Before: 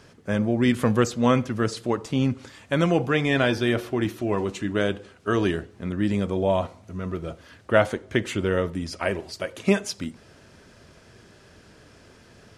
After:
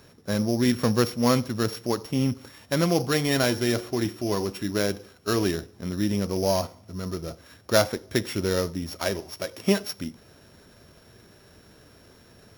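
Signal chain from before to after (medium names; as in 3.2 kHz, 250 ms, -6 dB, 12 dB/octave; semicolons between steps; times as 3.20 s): sorted samples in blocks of 8 samples; trim -1.5 dB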